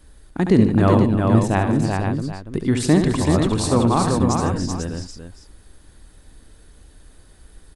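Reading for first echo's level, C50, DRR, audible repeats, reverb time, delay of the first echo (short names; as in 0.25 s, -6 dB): -7.0 dB, none, none, 6, none, 70 ms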